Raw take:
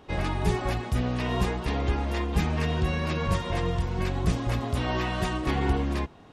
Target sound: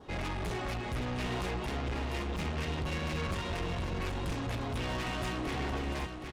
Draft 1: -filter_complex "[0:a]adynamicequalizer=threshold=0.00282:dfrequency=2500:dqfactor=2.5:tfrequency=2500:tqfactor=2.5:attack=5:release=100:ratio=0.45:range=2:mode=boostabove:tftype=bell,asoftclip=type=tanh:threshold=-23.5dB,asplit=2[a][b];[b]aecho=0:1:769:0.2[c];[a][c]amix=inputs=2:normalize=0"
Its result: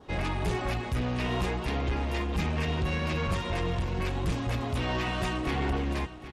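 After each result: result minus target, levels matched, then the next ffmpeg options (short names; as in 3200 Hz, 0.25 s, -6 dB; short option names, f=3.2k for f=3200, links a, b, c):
echo-to-direct -7 dB; soft clip: distortion -6 dB
-filter_complex "[0:a]adynamicequalizer=threshold=0.00282:dfrequency=2500:dqfactor=2.5:tfrequency=2500:tqfactor=2.5:attack=5:release=100:ratio=0.45:range=2:mode=boostabove:tftype=bell,asoftclip=type=tanh:threshold=-23.5dB,asplit=2[a][b];[b]aecho=0:1:769:0.447[c];[a][c]amix=inputs=2:normalize=0"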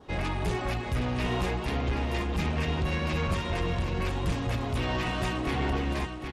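soft clip: distortion -6 dB
-filter_complex "[0:a]adynamicequalizer=threshold=0.00282:dfrequency=2500:dqfactor=2.5:tfrequency=2500:tqfactor=2.5:attack=5:release=100:ratio=0.45:range=2:mode=boostabove:tftype=bell,asoftclip=type=tanh:threshold=-33dB,asplit=2[a][b];[b]aecho=0:1:769:0.447[c];[a][c]amix=inputs=2:normalize=0"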